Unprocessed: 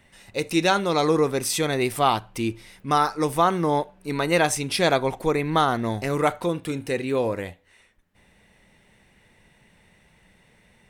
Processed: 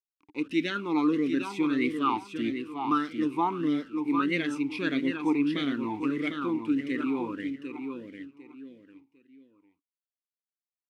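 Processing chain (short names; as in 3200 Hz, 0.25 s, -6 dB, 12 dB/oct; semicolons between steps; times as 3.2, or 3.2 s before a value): level-crossing sampler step -39 dBFS; on a send: feedback echo 0.751 s, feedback 27%, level -6.5 dB; on the sum: vowel sweep i-u 1.6 Hz; gain +6 dB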